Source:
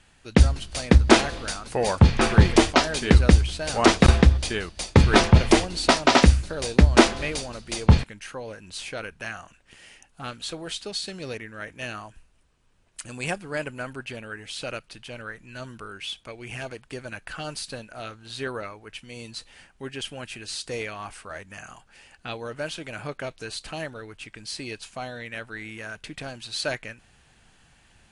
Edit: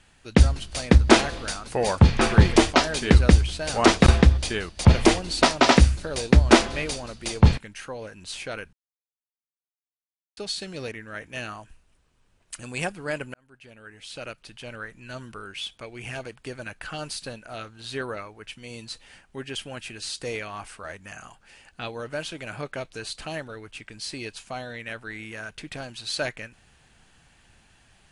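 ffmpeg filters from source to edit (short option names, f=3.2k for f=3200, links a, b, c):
-filter_complex "[0:a]asplit=5[a][b][c][d][e];[a]atrim=end=4.852[f];[b]atrim=start=5.308:end=9.19,asetpts=PTS-STARTPTS,afade=t=out:st=3.878:d=0.004:c=hsin[g];[c]atrim=start=9.19:end=10.83,asetpts=PTS-STARTPTS,volume=0[h];[d]atrim=start=10.83:end=13.8,asetpts=PTS-STARTPTS,afade=t=in:d=0.004:c=hsin,afade=t=out:st=2.966:d=0.004:c=hsin[i];[e]atrim=start=13.8,asetpts=PTS-STARTPTS,afade=t=in:d=1.4[j];[g][h][i][j]concat=n=4:v=0:a=1[k];[f][k]acrossfade=d=0.004:c1=hsin:c2=hsin"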